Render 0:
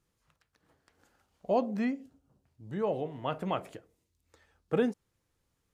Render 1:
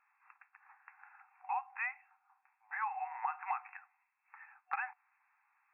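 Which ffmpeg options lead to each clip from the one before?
ffmpeg -i in.wav -af "afftfilt=real='re*between(b*sr/4096,740,2700)':imag='im*between(b*sr/4096,740,2700)':win_size=4096:overlap=0.75,acompressor=threshold=-46dB:ratio=12,volume=12.5dB" out.wav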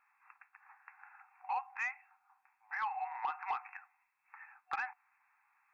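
ffmpeg -i in.wav -af "asoftclip=type=tanh:threshold=-28.5dB,volume=1.5dB" out.wav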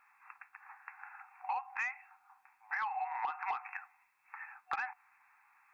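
ffmpeg -i in.wav -af "acompressor=threshold=-40dB:ratio=6,volume=6.5dB" out.wav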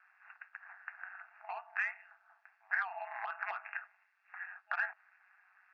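ffmpeg -i in.wav -af "aeval=exprs='val(0)*sin(2*PI*94*n/s)':channel_layout=same,highpass=frequency=420:width=0.5412,highpass=frequency=420:width=1.3066,equalizer=frequency=450:width_type=q:width=4:gain=-6,equalizer=frequency=650:width_type=q:width=4:gain=-6,equalizer=frequency=1000:width_type=q:width=4:gain=-10,equalizer=frequency=1600:width_type=q:width=4:gain=9,equalizer=frequency=2300:width_type=q:width=4:gain=-5,equalizer=frequency=3700:width_type=q:width=4:gain=-4,lowpass=frequency=4800:width=0.5412,lowpass=frequency=4800:width=1.3066,volume=3dB" out.wav

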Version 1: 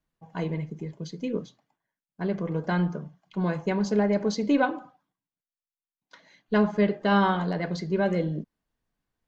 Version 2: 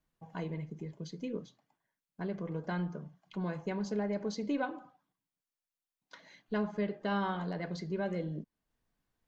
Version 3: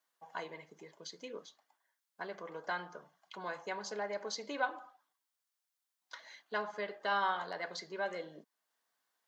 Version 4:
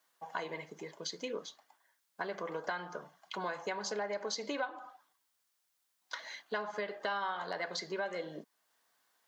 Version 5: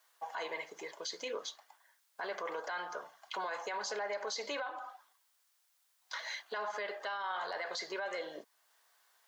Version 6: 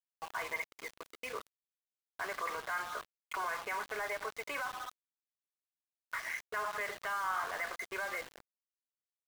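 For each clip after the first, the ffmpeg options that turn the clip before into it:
ffmpeg -i in.wav -af "acompressor=threshold=-50dB:ratio=1.5" out.wav
ffmpeg -i in.wav -af "highpass=790,equalizer=frequency=2500:width=3.1:gain=-5,volume=5.5dB" out.wav
ffmpeg -i in.wav -af "acompressor=threshold=-42dB:ratio=5,volume=8dB" out.wav
ffmpeg -i in.wav -af "highpass=550,alimiter=level_in=11dB:limit=-24dB:level=0:latency=1:release=12,volume=-11dB,volume=5dB" out.wav
ffmpeg -i in.wav -af "highpass=310,equalizer=frequency=330:width_type=q:width=4:gain=-4,equalizer=frequency=530:width_type=q:width=4:gain=-8,equalizer=frequency=850:width_type=q:width=4:gain=-5,equalizer=frequency=1200:width_type=q:width=4:gain=6,equalizer=frequency=2300:width_type=q:width=4:gain=7,lowpass=frequency=2400:width=0.5412,lowpass=frequency=2400:width=1.3066,aeval=exprs='val(0)*gte(abs(val(0)),0.00631)':channel_layout=same,volume=2dB" out.wav

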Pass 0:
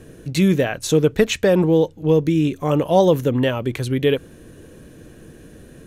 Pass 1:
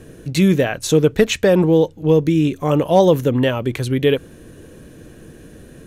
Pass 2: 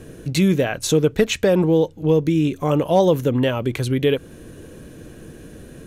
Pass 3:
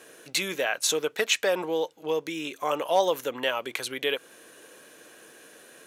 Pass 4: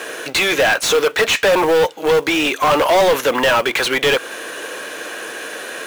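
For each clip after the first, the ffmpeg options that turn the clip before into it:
ffmpeg -i in.wav -af "asoftclip=type=hard:threshold=-5.5dB,volume=2dB" out.wav
ffmpeg -i in.wav -filter_complex "[0:a]bandreject=frequency=1800:width=26,asplit=2[link_01][link_02];[link_02]acompressor=threshold=-22dB:ratio=6,volume=0dB[link_03];[link_01][link_03]amix=inputs=2:normalize=0,volume=-5dB" out.wav
ffmpeg -i in.wav -af "highpass=790" out.wav
ffmpeg -i in.wav -filter_complex "[0:a]asplit=2[link_01][link_02];[link_02]highpass=frequency=720:poles=1,volume=30dB,asoftclip=type=tanh:threshold=-8dB[link_03];[link_01][link_03]amix=inputs=2:normalize=0,lowpass=frequency=2800:poles=1,volume=-6dB,acrusher=bits=5:mode=log:mix=0:aa=0.000001,volume=2.5dB" out.wav

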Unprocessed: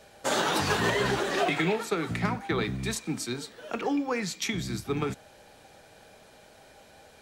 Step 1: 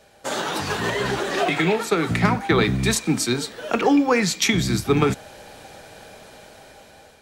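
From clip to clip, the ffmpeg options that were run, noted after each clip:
ffmpeg -i in.wav -af "dynaudnorm=framelen=710:gausssize=5:maxgain=11.5dB" out.wav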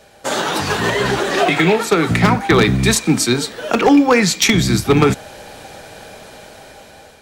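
ffmpeg -i in.wav -af "aeval=exprs='0.299*(abs(mod(val(0)/0.299+3,4)-2)-1)':channel_layout=same,volume=6.5dB" out.wav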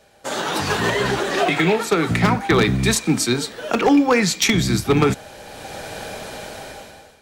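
ffmpeg -i in.wav -af "dynaudnorm=framelen=110:gausssize=9:maxgain=12dB,volume=-7dB" out.wav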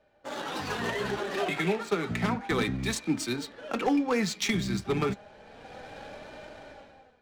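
ffmpeg -i in.wav -af "adynamicsmooth=sensitivity=4:basefreq=2600,flanger=delay=3.3:depth=1.8:regen=54:speed=0.31:shape=sinusoidal,volume=-7dB" out.wav

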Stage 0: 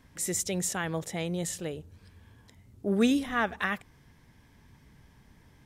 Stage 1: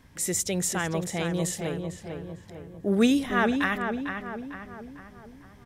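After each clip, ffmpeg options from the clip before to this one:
ffmpeg -i in.wav -filter_complex "[0:a]asplit=2[link_01][link_02];[link_02]adelay=450,lowpass=frequency=2200:poles=1,volume=-5.5dB,asplit=2[link_03][link_04];[link_04]adelay=450,lowpass=frequency=2200:poles=1,volume=0.51,asplit=2[link_05][link_06];[link_06]adelay=450,lowpass=frequency=2200:poles=1,volume=0.51,asplit=2[link_07][link_08];[link_08]adelay=450,lowpass=frequency=2200:poles=1,volume=0.51,asplit=2[link_09][link_10];[link_10]adelay=450,lowpass=frequency=2200:poles=1,volume=0.51,asplit=2[link_11][link_12];[link_12]adelay=450,lowpass=frequency=2200:poles=1,volume=0.51[link_13];[link_01][link_03][link_05][link_07][link_09][link_11][link_13]amix=inputs=7:normalize=0,volume=3dB" out.wav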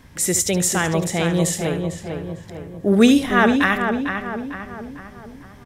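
ffmpeg -i in.wav -af "aecho=1:1:73:0.251,volume=8dB" out.wav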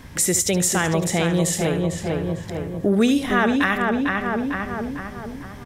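ffmpeg -i in.wav -af "acompressor=threshold=-26dB:ratio=2.5,volume=6dB" out.wav

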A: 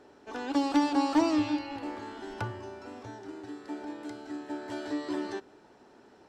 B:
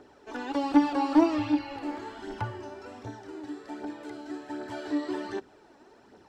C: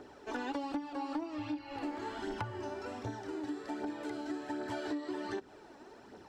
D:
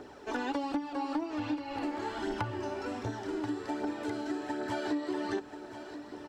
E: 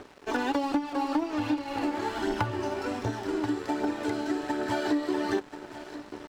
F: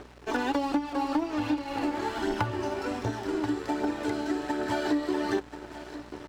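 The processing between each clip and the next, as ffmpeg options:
ffmpeg -i in.wav -filter_complex "[0:a]acrossover=split=3300[link_01][link_02];[link_02]acompressor=threshold=-52dB:ratio=4:attack=1:release=60[link_03];[link_01][link_03]amix=inputs=2:normalize=0,aphaser=in_gain=1:out_gain=1:delay=3.7:decay=0.48:speed=1.3:type=triangular" out.wav
ffmpeg -i in.wav -af "acompressor=threshold=-36dB:ratio=16,volume=2dB" out.wav
ffmpeg -i in.wav -af "aecho=1:1:1033:0.266,volume=4dB" out.wav
ffmpeg -i in.wav -af "aeval=exprs='sgn(val(0))*max(abs(val(0))-0.00316,0)':channel_layout=same,volume=6.5dB" out.wav
ffmpeg -i in.wav -af "aeval=exprs='val(0)+0.00224*(sin(2*PI*60*n/s)+sin(2*PI*2*60*n/s)/2+sin(2*PI*3*60*n/s)/3+sin(2*PI*4*60*n/s)/4+sin(2*PI*5*60*n/s)/5)':channel_layout=same" out.wav

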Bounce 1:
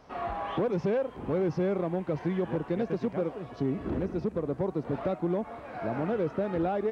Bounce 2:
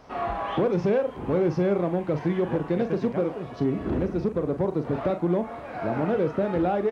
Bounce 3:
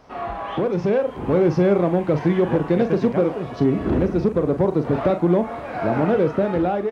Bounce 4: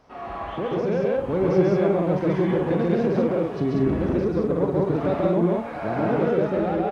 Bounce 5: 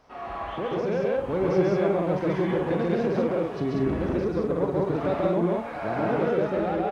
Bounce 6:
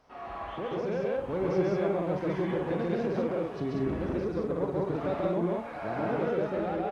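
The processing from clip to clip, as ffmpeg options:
ffmpeg -i in.wav -filter_complex "[0:a]asplit=2[link_01][link_02];[link_02]adelay=40,volume=-10dB[link_03];[link_01][link_03]amix=inputs=2:normalize=0,volume=4.5dB" out.wav
ffmpeg -i in.wav -af "dynaudnorm=framelen=400:gausssize=5:maxgain=6.5dB" out.wav
ffmpeg -i in.wav -af "aecho=1:1:137|189.5:0.891|0.891,volume=-6.5dB" out.wav
ffmpeg -i in.wav -af "equalizer=frequency=170:width=0.38:gain=-4.5" out.wav
ffmpeg -i in.wav -af "volume=-5dB" -ar 48000 -c:a libopus -b:a 64k out.opus

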